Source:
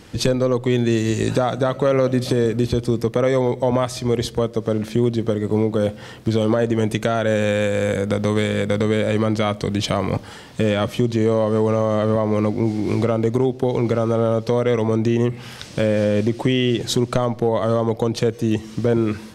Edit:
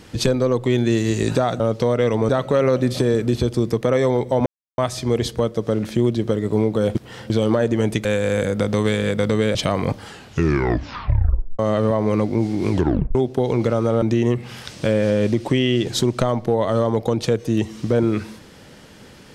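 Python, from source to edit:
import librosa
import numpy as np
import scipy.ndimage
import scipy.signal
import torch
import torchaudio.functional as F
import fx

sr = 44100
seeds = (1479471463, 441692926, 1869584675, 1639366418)

y = fx.edit(x, sr, fx.insert_silence(at_s=3.77, length_s=0.32),
    fx.reverse_span(start_s=5.94, length_s=0.35),
    fx.cut(start_s=7.04, length_s=0.52),
    fx.cut(start_s=9.06, length_s=0.74),
    fx.tape_stop(start_s=10.31, length_s=1.53),
    fx.tape_stop(start_s=12.96, length_s=0.44),
    fx.move(start_s=14.27, length_s=0.69, to_s=1.6), tone=tone)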